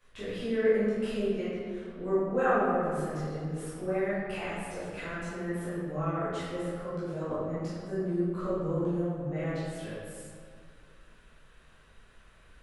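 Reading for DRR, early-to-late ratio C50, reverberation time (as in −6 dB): −12.5 dB, −3.5 dB, 2.2 s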